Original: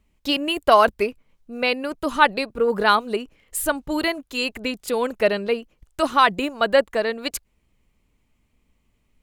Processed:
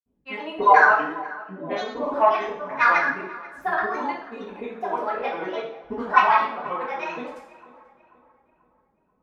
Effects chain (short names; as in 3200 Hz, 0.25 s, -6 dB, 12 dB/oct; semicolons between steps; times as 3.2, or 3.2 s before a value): auto-wah 330–1200 Hz, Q 2.1, up, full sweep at -18.5 dBFS; tilt -1.5 dB/oct; grains, grains 28/s, pitch spread up and down by 7 st; darkening echo 0.487 s, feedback 44%, low-pass 2600 Hz, level -19 dB; two-slope reverb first 0.55 s, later 1.5 s, DRR -7 dB; gain -1 dB